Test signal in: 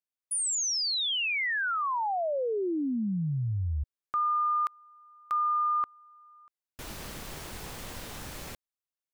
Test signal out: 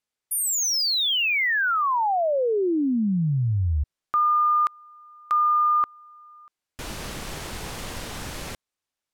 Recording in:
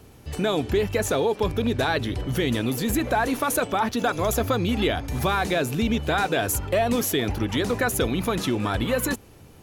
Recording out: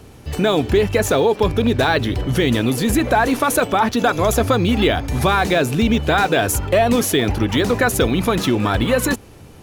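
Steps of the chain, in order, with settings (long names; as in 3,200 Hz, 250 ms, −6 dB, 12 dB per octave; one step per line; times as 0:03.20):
linearly interpolated sample-rate reduction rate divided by 2×
level +7 dB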